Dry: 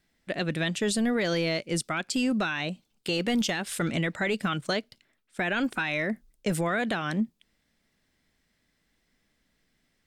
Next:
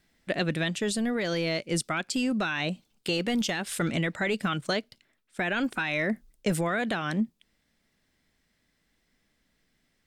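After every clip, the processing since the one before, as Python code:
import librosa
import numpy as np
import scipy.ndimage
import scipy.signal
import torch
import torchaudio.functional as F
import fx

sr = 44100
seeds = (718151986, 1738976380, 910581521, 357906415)

y = fx.rider(x, sr, range_db=4, speed_s=0.5)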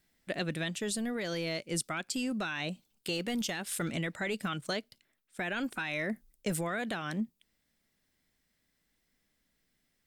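y = fx.high_shelf(x, sr, hz=9200.0, db=11.5)
y = y * 10.0 ** (-6.5 / 20.0)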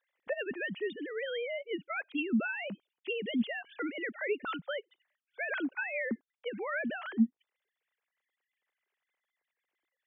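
y = fx.sine_speech(x, sr)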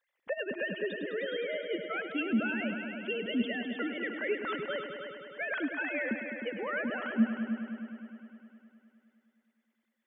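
y = fx.echo_heads(x, sr, ms=103, heads='all three', feedback_pct=61, wet_db=-11.5)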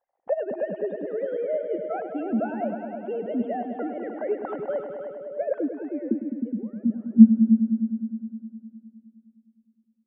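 y = fx.filter_sweep_lowpass(x, sr, from_hz=760.0, to_hz=210.0, start_s=5.06, end_s=6.74, q=6.2)
y = y * 10.0 ** (2.5 / 20.0)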